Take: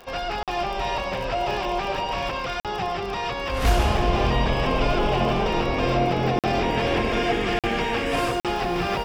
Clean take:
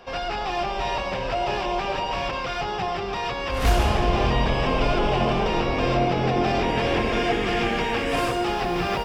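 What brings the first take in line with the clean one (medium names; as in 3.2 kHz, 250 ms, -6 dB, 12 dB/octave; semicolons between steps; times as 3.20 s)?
de-click; interpolate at 0.43/2.60/6.39/7.59/8.40 s, 47 ms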